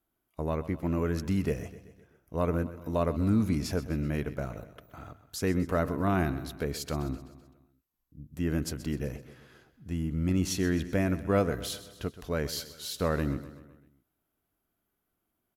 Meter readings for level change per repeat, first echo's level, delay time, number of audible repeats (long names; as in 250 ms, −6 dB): −5.5 dB, −15.0 dB, 128 ms, 4